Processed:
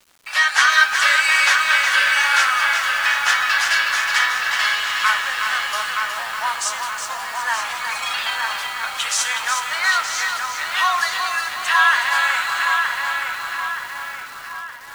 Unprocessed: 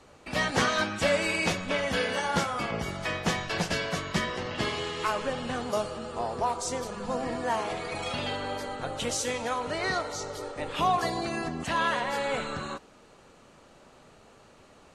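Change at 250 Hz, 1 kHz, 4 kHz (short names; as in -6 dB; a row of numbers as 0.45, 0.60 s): under -15 dB, +9.5 dB, +13.0 dB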